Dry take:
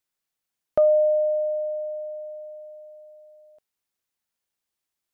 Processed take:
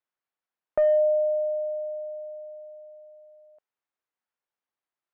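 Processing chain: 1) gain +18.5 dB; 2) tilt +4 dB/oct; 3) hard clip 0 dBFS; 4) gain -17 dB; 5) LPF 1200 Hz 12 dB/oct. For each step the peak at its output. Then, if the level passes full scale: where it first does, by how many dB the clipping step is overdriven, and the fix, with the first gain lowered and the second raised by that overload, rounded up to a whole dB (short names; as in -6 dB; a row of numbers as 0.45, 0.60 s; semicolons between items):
+6.5, +4.5, 0.0, -17.0, -16.5 dBFS; step 1, 4.5 dB; step 1 +13.5 dB, step 4 -12 dB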